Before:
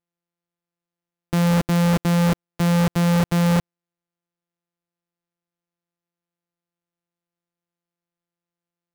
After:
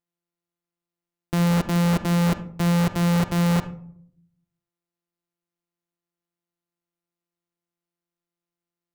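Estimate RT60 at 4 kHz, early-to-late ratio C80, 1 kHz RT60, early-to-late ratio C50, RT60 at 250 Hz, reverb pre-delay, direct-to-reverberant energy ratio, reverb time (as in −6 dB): 0.30 s, 17.5 dB, 0.55 s, 13.0 dB, 1.1 s, 3 ms, 10.5 dB, 0.65 s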